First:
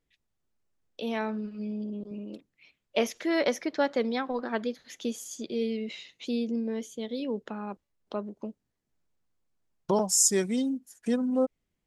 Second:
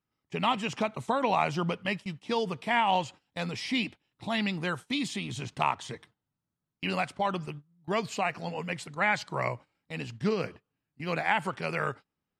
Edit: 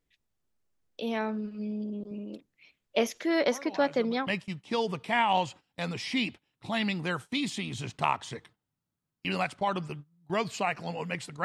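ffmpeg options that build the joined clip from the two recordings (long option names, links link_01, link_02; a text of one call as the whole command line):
ffmpeg -i cue0.wav -i cue1.wav -filter_complex "[1:a]asplit=2[link_01][link_02];[0:a]apad=whole_dur=11.44,atrim=end=11.44,atrim=end=4.272[link_03];[link_02]atrim=start=1.848:end=9.02[link_04];[link_01]atrim=start=1.08:end=1.85,asetpts=PTS-STARTPTS,volume=-16.5dB,afade=type=in:duration=0.004:curve=hsin,afade=type=out:start_time=0.766:duration=0.004:curve=hsin,adelay=3500[link_05];[link_03][link_04]acrossfade=duration=0.004:curve1=hsin:curve2=hsin[link_06];[link_06][link_05]amix=inputs=2:normalize=0" out.wav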